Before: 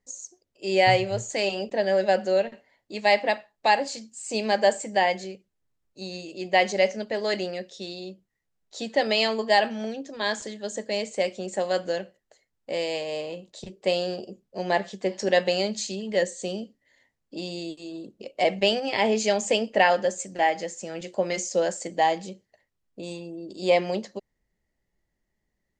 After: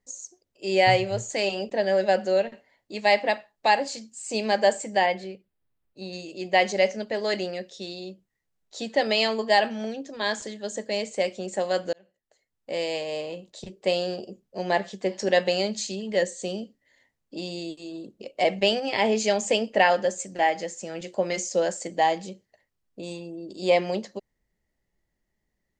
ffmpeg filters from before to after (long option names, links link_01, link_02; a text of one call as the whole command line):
ffmpeg -i in.wav -filter_complex "[0:a]asettb=1/sr,asplit=3[link_01][link_02][link_03];[link_01]atrim=end=5.064[link_04];[link_02]atrim=start=5.06:end=6.13,asetpts=PTS-STARTPTS,afade=type=in:duration=0.004:curve=qsin,afade=type=out:start_time=1.066:duration=0.004:curve=qsin,equalizer=frequency=6600:width_type=o:width=0.77:gain=-13[link_05];[link_03]atrim=start=6.126[link_06];[link_04][link_05]acrossfade=duration=0.004:curve1=hsin:curve2=qsin[link_07];[link_07][link_06]acrossfade=duration=0.004:curve1=qsin:curve2=hsin,asplit=2[link_08][link_09];[link_08]atrim=end=11.93,asetpts=PTS-STARTPTS,afade=type=out:start_time=11.926:duration=0.004:curve=hsin[link_10];[link_09]atrim=start=11.93,asetpts=PTS-STARTPTS,afade=type=in:duration=0.9[link_11];[link_10][link_11]concat=n=2:v=0:a=1" out.wav